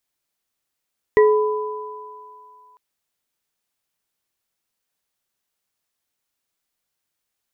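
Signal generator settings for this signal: sine partials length 1.60 s, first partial 426 Hz, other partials 997/1940 Hz, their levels -11/-9 dB, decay 1.69 s, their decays 3.19/0.24 s, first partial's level -8.5 dB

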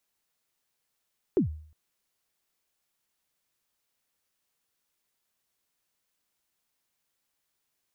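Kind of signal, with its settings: kick drum length 0.36 s, from 430 Hz, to 77 Hz, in 112 ms, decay 0.53 s, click off, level -17 dB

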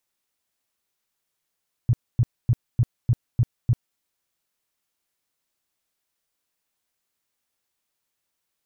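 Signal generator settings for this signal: tone bursts 119 Hz, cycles 5, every 0.30 s, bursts 7, -14 dBFS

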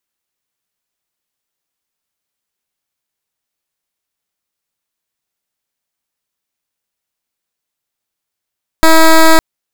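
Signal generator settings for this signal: pulse 322 Hz, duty 11% -4.5 dBFS 0.56 s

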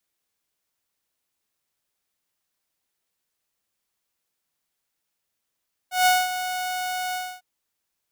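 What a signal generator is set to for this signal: ADSR saw 734 Hz, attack 152 ms, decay 216 ms, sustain -11.5 dB, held 1.23 s, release 271 ms -12 dBFS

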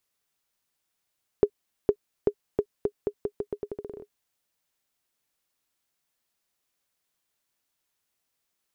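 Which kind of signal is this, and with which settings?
bouncing ball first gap 0.46 s, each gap 0.83, 412 Hz, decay 68 ms -7.5 dBFS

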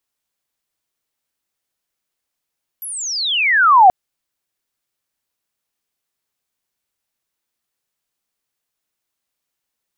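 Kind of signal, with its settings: sweep logarithmic 12 kHz -> 710 Hz -26 dBFS -> -3.5 dBFS 1.08 s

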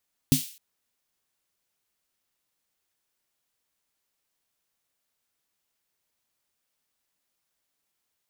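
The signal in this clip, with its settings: snare drum length 0.26 s, tones 150 Hz, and 260 Hz, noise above 2.7 kHz, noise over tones -8 dB, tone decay 0.14 s, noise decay 0.46 s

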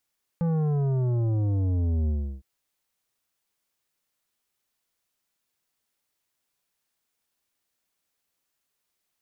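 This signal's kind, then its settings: sub drop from 170 Hz, over 2.01 s, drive 10.5 dB, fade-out 0.34 s, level -23 dB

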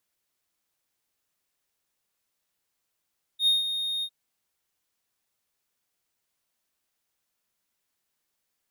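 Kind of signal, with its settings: ADSR triangle 3.7 kHz, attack 81 ms, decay 159 ms, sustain -9.5 dB, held 0.64 s, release 63 ms -15.5 dBFS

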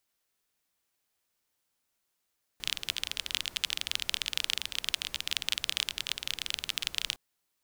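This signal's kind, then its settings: rain from filtered ticks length 4.56 s, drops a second 24, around 3.2 kHz, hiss -17 dB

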